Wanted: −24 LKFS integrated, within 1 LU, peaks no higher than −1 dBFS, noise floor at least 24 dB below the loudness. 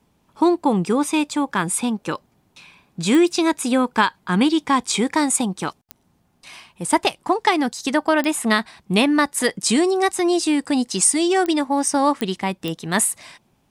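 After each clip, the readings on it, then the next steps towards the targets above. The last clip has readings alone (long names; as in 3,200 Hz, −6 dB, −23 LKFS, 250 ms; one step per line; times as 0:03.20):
number of clicks 6; integrated loudness −20.0 LKFS; sample peak −4.5 dBFS; target loudness −24.0 LKFS
→ click removal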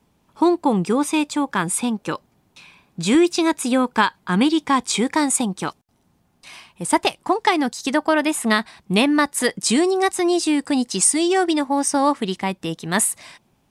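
number of clicks 0; integrated loudness −20.0 LKFS; sample peak −4.5 dBFS; target loudness −24.0 LKFS
→ level −4 dB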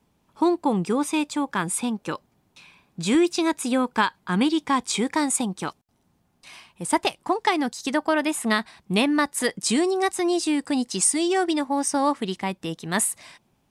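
integrated loudness −24.0 LKFS; sample peak −8.5 dBFS; background noise floor −68 dBFS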